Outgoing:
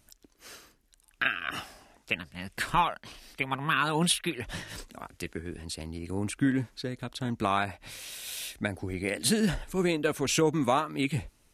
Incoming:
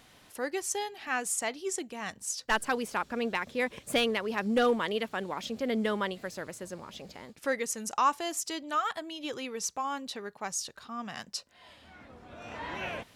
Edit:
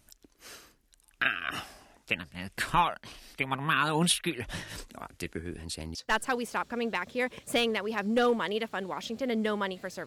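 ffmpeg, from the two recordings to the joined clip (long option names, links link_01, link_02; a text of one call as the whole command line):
ffmpeg -i cue0.wav -i cue1.wav -filter_complex "[0:a]apad=whole_dur=10.06,atrim=end=10.06,atrim=end=5.952[link_01];[1:a]atrim=start=2.348:end=6.46[link_02];[link_01][link_02]acrossfade=duration=0.004:curve1=hsin:curve2=hsin" out.wav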